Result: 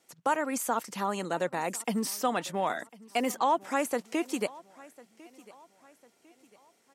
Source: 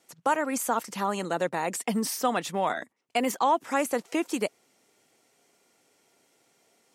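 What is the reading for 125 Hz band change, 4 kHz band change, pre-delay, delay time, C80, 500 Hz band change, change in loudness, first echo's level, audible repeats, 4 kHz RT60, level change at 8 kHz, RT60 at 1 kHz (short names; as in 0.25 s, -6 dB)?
-2.5 dB, -2.5 dB, none, 1.05 s, none, -2.5 dB, -2.5 dB, -22.0 dB, 2, none, -2.5 dB, none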